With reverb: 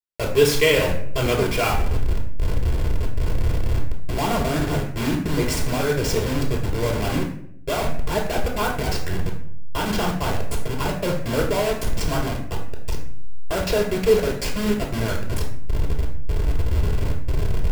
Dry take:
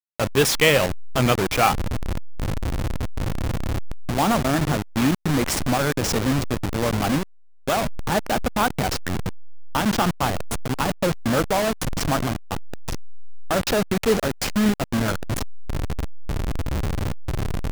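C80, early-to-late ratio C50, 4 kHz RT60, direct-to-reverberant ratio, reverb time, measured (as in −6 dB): 10.0 dB, 6.5 dB, 0.45 s, −0.5 dB, 0.65 s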